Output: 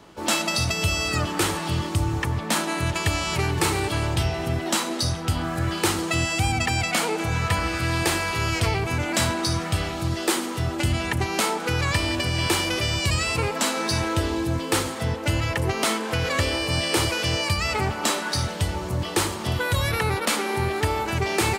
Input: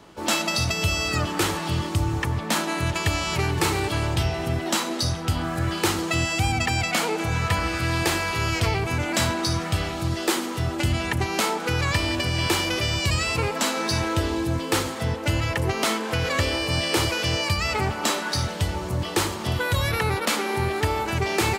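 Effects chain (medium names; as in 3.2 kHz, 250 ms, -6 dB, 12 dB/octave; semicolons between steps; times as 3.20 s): dynamic bell 9 kHz, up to +5 dB, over -47 dBFS, Q 3.8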